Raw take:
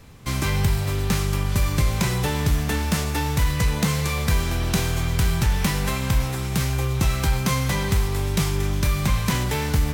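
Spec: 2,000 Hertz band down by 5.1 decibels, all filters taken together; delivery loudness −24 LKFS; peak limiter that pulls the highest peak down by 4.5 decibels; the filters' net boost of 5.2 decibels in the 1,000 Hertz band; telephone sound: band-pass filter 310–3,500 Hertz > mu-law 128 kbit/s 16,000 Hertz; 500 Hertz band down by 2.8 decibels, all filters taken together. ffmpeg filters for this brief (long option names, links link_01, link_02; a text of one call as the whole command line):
ffmpeg -i in.wav -af "equalizer=frequency=500:width_type=o:gain=-4,equalizer=frequency=1000:width_type=o:gain=9,equalizer=frequency=2000:width_type=o:gain=-8.5,alimiter=limit=-14.5dB:level=0:latency=1,highpass=310,lowpass=3500,volume=6.5dB" -ar 16000 -c:a pcm_mulaw out.wav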